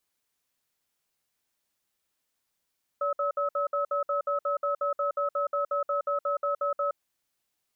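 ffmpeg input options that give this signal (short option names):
-f lavfi -i "aevalsrc='0.0422*(sin(2*PI*573*t)+sin(2*PI*1290*t))*clip(min(mod(t,0.18),0.12-mod(t,0.18))/0.005,0,1)':d=3.9:s=44100"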